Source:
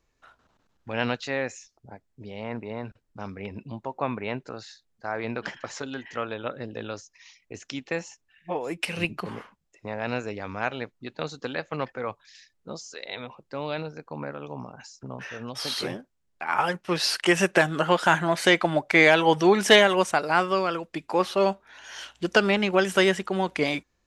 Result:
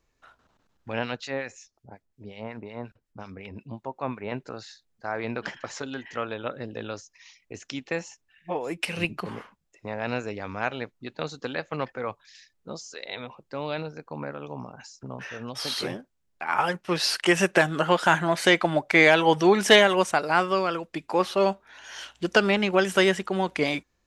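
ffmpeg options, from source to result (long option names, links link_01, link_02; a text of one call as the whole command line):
ffmpeg -i in.wav -filter_complex "[0:a]asettb=1/sr,asplit=3[link_01][link_02][link_03];[link_01]atrim=end=0.994[link_04];[link_02]atrim=start=0.99:end=4.32,asetpts=PTS-STARTPTS,afade=type=in:duration=0.004:curve=qsin,afade=type=out:start_time=3.326:duration=0.004:curve=qsin,acrossover=split=1400[link_05][link_06];[link_05]aeval=exprs='val(0)*(1-0.7/2+0.7/2*cos(2*PI*5.5*n/s))':channel_layout=same[link_07];[link_06]aeval=exprs='val(0)*(1-0.7/2-0.7/2*cos(2*PI*5.5*n/s))':channel_layout=same[link_08];[link_07][link_08]amix=inputs=2:normalize=0[link_09];[link_03]atrim=start=4.316[link_10];[link_04][link_09]acrossfade=duration=0.004:curve1=hsin:curve2=qsin[link_11];[link_11][link_10]acrossfade=duration=0.004:curve1=qsin:curve2=hsin" out.wav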